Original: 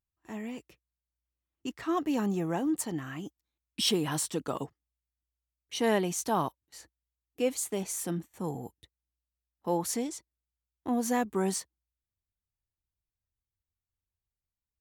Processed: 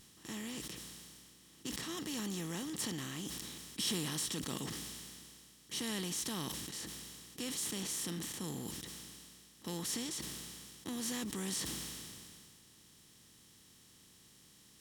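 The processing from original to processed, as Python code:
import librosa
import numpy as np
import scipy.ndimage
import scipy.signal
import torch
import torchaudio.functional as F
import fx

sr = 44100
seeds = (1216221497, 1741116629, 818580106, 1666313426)

y = fx.bin_compress(x, sr, power=0.4)
y = fx.tone_stack(y, sr, knobs='6-0-2')
y = fx.sustainer(y, sr, db_per_s=24.0)
y = F.gain(torch.from_numpy(y), 5.0).numpy()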